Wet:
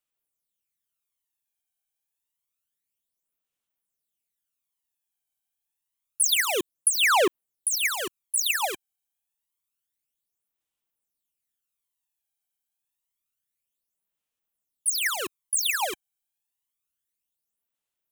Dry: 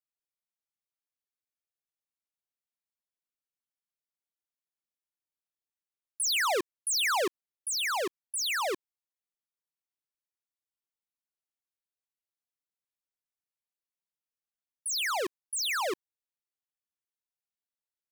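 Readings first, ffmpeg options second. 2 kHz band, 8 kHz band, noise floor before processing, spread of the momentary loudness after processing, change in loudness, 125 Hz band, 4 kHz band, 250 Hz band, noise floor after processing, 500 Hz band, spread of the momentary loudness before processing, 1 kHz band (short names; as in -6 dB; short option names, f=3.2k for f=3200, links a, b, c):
+5.0 dB, +7.0 dB, under -85 dBFS, 11 LU, +5.5 dB, n/a, +4.0 dB, +4.0 dB, under -85 dBFS, +3.5 dB, 8 LU, +3.5 dB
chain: -af "aphaser=in_gain=1:out_gain=1:delay=1.3:decay=0.6:speed=0.28:type=sinusoidal,aexciter=amount=1:drive=8.2:freq=2.6k"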